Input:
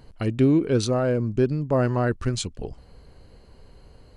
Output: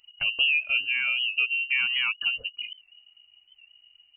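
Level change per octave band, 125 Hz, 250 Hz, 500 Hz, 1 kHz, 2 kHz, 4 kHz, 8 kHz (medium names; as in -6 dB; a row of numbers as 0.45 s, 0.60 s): under -35 dB, under -35 dB, under -30 dB, -13.0 dB, +14.0 dB, +12.5 dB, under -40 dB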